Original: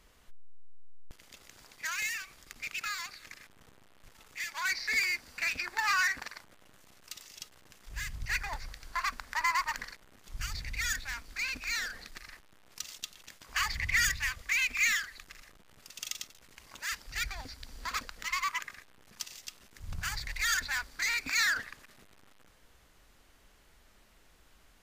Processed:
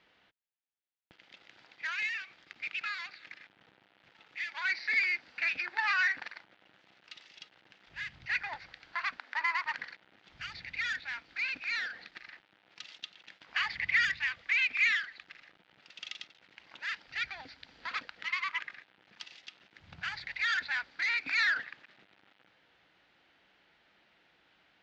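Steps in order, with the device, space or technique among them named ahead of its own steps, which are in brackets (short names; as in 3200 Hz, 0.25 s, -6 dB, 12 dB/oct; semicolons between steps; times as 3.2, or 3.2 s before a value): 9.17–9.64 elliptic high-pass 230 Hz; kitchen radio (speaker cabinet 220–3800 Hz, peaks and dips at 240 Hz -7 dB, 420 Hz -7 dB, 600 Hz -4 dB, 1100 Hz -8 dB); gain +1.5 dB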